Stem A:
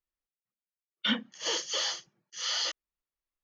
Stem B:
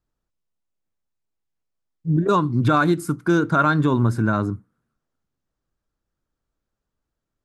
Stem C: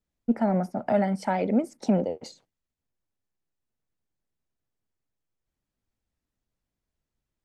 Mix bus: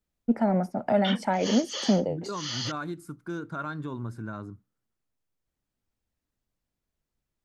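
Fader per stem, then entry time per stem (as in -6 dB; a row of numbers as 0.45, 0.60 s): -3.0, -16.5, 0.0 dB; 0.00, 0.00, 0.00 s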